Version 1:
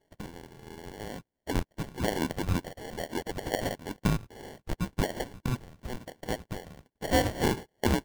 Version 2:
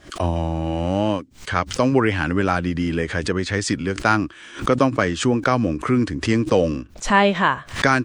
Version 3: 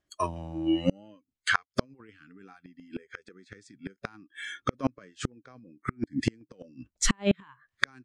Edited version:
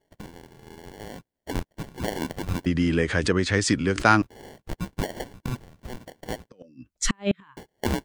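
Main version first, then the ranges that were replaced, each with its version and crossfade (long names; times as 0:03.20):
1
0:02.66–0:04.22: punch in from 2
0:06.49–0:07.57: punch in from 3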